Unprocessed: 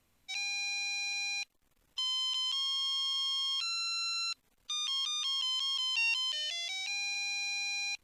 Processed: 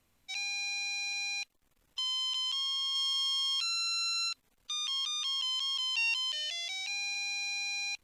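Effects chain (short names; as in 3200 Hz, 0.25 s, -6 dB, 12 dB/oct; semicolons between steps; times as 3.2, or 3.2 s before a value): 2.95–4.29 high shelf 4800 Hz +5.5 dB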